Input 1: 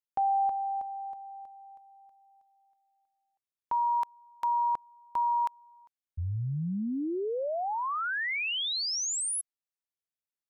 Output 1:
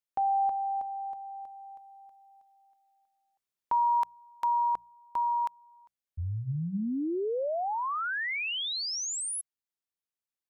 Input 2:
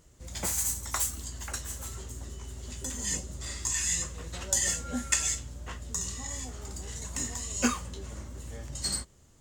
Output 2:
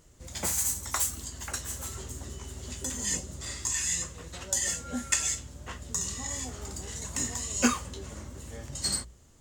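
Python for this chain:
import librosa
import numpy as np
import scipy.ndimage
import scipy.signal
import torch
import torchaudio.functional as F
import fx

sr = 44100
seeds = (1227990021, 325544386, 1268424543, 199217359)

y = fx.hum_notches(x, sr, base_hz=60, count=3)
y = fx.rider(y, sr, range_db=4, speed_s=2.0)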